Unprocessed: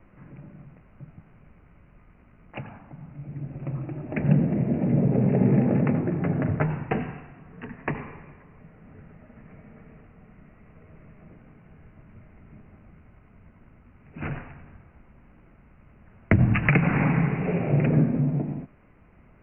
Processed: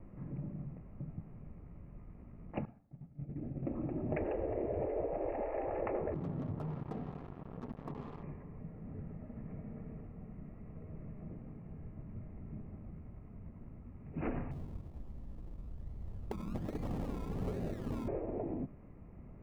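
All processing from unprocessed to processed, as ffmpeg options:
ffmpeg -i in.wav -filter_complex "[0:a]asettb=1/sr,asplit=3[link_01][link_02][link_03];[link_01]atrim=end=2.654[link_04];[link_02]atrim=start=2.65:end=3.72,asetpts=PTS-STARTPTS,afade=type=in:duration=0.004:curve=qsin,afade=type=out:start_time=1.066:duration=0.004:curve=qsin,bandreject=frequency=50:width_type=h:width=6,bandreject=frequency=100:width_type=h:width=6,bandreject=frequency=150:width_type=h:width=6,bandreject=frequency=200:width_type=h:width=6,bandreject=frequency=250:width_type=h:width=6,agate=range=-33dB:threshold=-35dB:ratio=3:release=100:detection=peak,equalizer=frequency=1000:width_type=o:width=0.34:gain=-7.5[link_05];[link_03]atrim=start=3.716[link_06];[link_04][link_05]acrossfade=duration=0.004:curve1=hsin:curve2=qsin[link_07];[link_07][link_06]acrossfade=duration=0.004:curve1=qsin:curve2=hsin,asettb=1/sr,asplit=3[link_08][link_09][link_10];[link_08]atrim=end=6.144[link_11];[link_09]atrim=start=6.14:end=8.23,asetpts=PTS-STARTPTS,afade=type=in:duration=0.004:curve=qsin,afade=type=out:start_time=2.086:duration=0.004:curve=qsin,highshelf=frequency=1700:width_type=q:width=3:gain=-10,acompressor=threshold=-42dB:ratio=4:attack=3.2:release=140:knee=1:detection=peak,acrusher=bits=6:mix=0:aa=0.5[link_12];[link_10]atrim=start=8.226[link_13];[link_11][link_12]acrossfade=duration=0.004:curve1=hsin:curve2=qsin[link_14];[link_14][link_13]acrossfade=duration=0.004:curve1=qsin:curve2=hsin,asettb=1/sr,asplit=3[link_15][link_16][link_17];[link_15]atrim=end=14.514[link_18];[link_16]atrim=start=14.51:end=18.08,asetpts=PTS-STARTPTS,afade=type=in:duration=0.004:curve=qsin,afade=type=out:start_time=3.566:duration=0.004:curve=qsin,asubboost=boost=6.5:cutoff=95,acompressor=threshold=-34dB:ratio=4:attack=3.2:release=140:knee=1:detection=peak,acrusher=samples=29:mix=1:aa=0.000001:lfo=1:lforange=17.4:lforate=1.2[link_19];[link_17]atrim=start=18.076[link_20];[link_18][link_19]acrossfade=duration=0.004:curve1=hsin:curve2=qsin[link_21];[link_21][link_20]acrossfade=duration=0.004:curve1=qsin:curve2=hsin,tiltshelf=frequency=1100:gain=9.5,bandreject=frequency=1500:width=9.5,afftfilt=real='re*lt(hypot(re,im),0.398)':imag='im*lt(hypot(re,im),0.398)':win_size=1024:overlap=0.75,volume=-6dB" out.wav

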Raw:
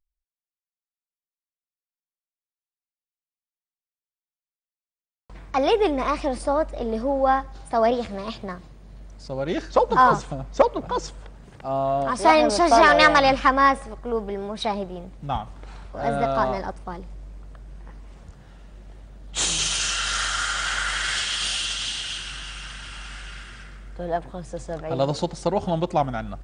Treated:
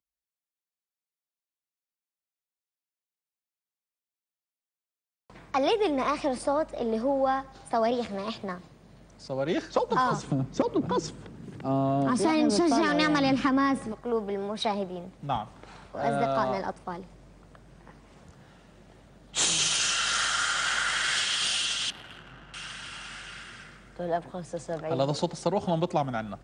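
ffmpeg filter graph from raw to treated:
ffmpeg -i in.wav -filter_complex "[0:a]asettb=1/sr,asplit=3[link_01][link_02][link_03];[link_01]atrim=end=10.234[link_04];[link_02]atrim=start=10.23:end=13.92,asetpts=PTS-STARTPTS,afade=type=in:duration=0.004:curve=qsin,afade=type=out:start_time=3.686:duration=0.004:curve=qsin,highpass=62,lowshelf=frequency=440:width_type=q:width=1.5:gain=8.5,acompressor=threshold=-19dB:ratio=2:attack=3.2:release=140:knee=1:detection=peak[link_05];[link_03]atrim=start=13.916[link_06];[link_04][link_05]acrossfade=duration=0.004:curve1=hsin:curve2=qsin[link_07];[link_07][link_06]acrossfade=duration=0.004:curve1=qsin:curve2=hsin,asettb=1/sr,asplit=3[link_08][link_09][link_10];[link_08]atrim=end=21.904[link_11];[link_09]atrim=start=21.9:end=22.54,asetpts=PTS-STARTPTS,afade=type=in:duration=0.004:curve=qsin,afade=type=out:start_time=0.636:duration=0.004:curve=qsin,aeval=exprs='val(0)+0.5*0.00501*sgn(val(0))':channel_layout=same,adynamicsmooth=sensitivity=1.5:basefreq=600[link_12];[link_10]atrim=start=22.536[link_13];[link_11][link_12]acrossfade=duration=0.004:curve1=hsin:curve2=qsin[link_14];[link_14][link_13]acrossfade=duration=0.004:curve1=qsin:curve2=hsin,highpass=120,acrossover=split=240|3000[link_15][link_16][link_17];[link_16]acompressor=threshold=-21dB:ratio=6[link_18];[link_15][link_18][link_17]amix=inputs=3:normalize=0,volume=-1.5dB" out.wav

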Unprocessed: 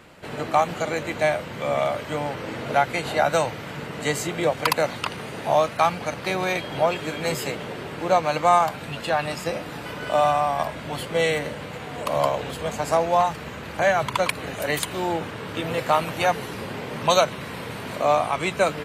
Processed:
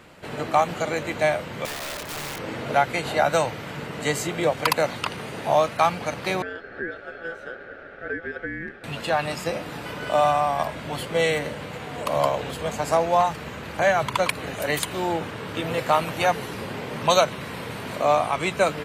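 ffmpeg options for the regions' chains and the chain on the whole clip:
ffmpeg -i in.wav -filter_complex "[0:a]asettb=1/sr,asplit=3[link_01][link_02][link_03];[link_01]atrim=end=1.654[link_04];[link_02]atrim=start=1.65:end=2.39,asetpts=PTS-STARTPTS,afade=type=in:duration=0.004:curve=qsin,afade=type=out:start_time=0.736:duration=0.004:curve=qsin,acompressor=threshold=-25dB:ratio=10:attack=3.2:release=140:knee=1:detection=peak,aeval=exprs='(mod(23.7*val(0)+1,2)-1)/23.7':channel_layout=same[link_05];[link_03]atrim=start=2.386[link_06];[link_04][link_05]acrossfade=duration=0.004:curve1=hsin:curve2=qsin[link_07];[link_07][link_06]acrossfade=duration=0.004:curve1=qsin:curve2=hsin,asettb=1/sr,asplit=3[link_08][link_09][link_10];[link_08]atrim=end=6.424[link_11];[link_09]atrim=start=6.42:end=8.84,asetpts=PTS-STARTPTS,afade=type=in:duration=0.004:curve=qsin,afade=type=out:start_time=2.416:duration=0.004:curve=qsin,acompressor=threshold=-21dB:ratio=5:attack=3.2:release=140:knee=1:detection=peak,bandpass=frequency=560:width_type=q:width=1.8,aeval=exprs='val(0)*sin(2*PI*1000*n/s)':channel_layout=same[link_12];[link_10]atrim=start=8.836[link_13];[link_11][link_12]acrossfade=duration=0.004:curve1=hsin:curve2=qsin[link_14];[link_14][link_13]acrossfade=duration=0.004:curve1=qsin:curve2=hsin" out.wav

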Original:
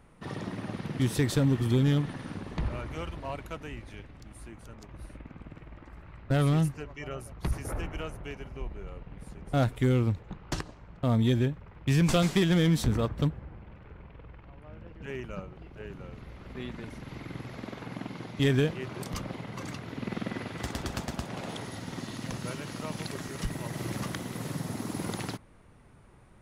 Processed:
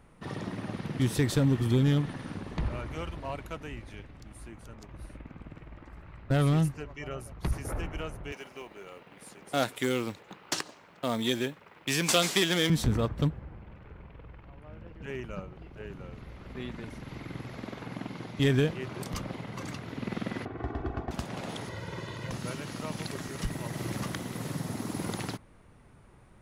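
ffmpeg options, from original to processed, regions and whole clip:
ffmpeg -i in.wav -filter_complex "[0:a]asettb=1/sr,asplit=3[link_01][link_02][link_03];[link_01]atrim=end=8.324[link_04];[link_02]atrim=start=8.32:end=12.7,asetpts=PTS-STARTPTS,afade=type=in:duration=0.004:curve=qsin,afade=type=out:start_time=4.376:duration=0.004:curve=qsin,highpass=290,highshelf=frequency=2100:gain=9.5,acrusher=bits=7:mode=log:mix=0:aa=0.000001[link_05];[link_03]atrim=start=12.696[link_06];[link_04][link_05]acrossfade=duration=0.004:curve1=hsin:curve2=qsin[link_07];[link_07][link_06]acrossfade=duration=0.004:curve1=qsin:curve2=hsin,asettb=1/sr,asplit=3[link_08][link_09][link_10];[link_08]atrim=end=20.454[link_11];[link_09]atrim=start=20.45:end=21.11,asetpts=PTS-STARTPTS,afade=type=in:duration=0.004:curve=qsin,afade=type=out:start_time=0.656:duration=0.004:curve=qsin,lowpass=1200,aecho=1:1:2.7:0.67,atrim=end_sample=29106[link_12];[link_10]atrim=start=21.106[link_13];[link_11][link_12]acrossfade=duration=0.004:curve1=hsin:curve2=qsin[link_14];[link_14][link_13]acrossfade=duration=0.004:curve1=qsin:curve2=hsin,asettb=1/sr,asplit=3[link_15][link_16][link_17];[link_15]atrim=end=21.694[link_18];[link_16]atrim=start=21.69:end=22.31,asetpts=PTS-STARTPTS,afade=type=in:duration=0.004:curve=qsin,afade=type=out:start_time=0.616:duration=0.004:curve=qsin,acrossover=split=3500[link_19][link_20];[link_20]acompressor=threshold=-59dB:ratio=4:attack=1:release=60[link_21];[link_19][link_21]amix=inputs=2:normalize=0,highpass=43,aecho=1:1:2:0.8,atrim=end_sample=27342[link_22];[link_17]atrim=start=22.306[link_23];[link_18][link_22]acrossfade=duration=0.004:curve1=hsin:curve2=qsin[link_24];[link_24][link_23]acrossfade=duration=0.004:curve1=qsin:curve2=hsin" out.wav

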